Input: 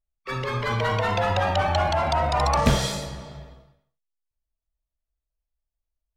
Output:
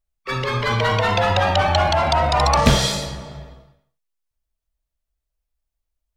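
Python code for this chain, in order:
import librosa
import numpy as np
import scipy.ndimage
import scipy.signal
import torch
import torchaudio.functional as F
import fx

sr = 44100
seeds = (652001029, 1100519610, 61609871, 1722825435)

y = fx.dynamic_eq(x, sr, hz=4000.0, q=0.85, threshold_db=-43.0, ratio=4.0, max_db=4)
y = y * librosa.db_to_amplitude(4.5)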